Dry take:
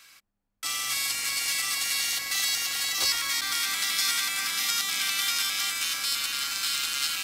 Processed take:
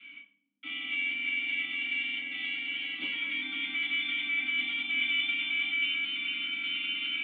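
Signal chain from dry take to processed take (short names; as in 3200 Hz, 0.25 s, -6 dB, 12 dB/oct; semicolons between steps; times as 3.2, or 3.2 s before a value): tilt +3 dB/oct; reverse; upward compressor, threshold -31 dBFS; reverse; vocal tract filter i; reverb RT60 0.45 s, pre-delay 3 ms, DRR -11.5 dB; gain -2.5 dB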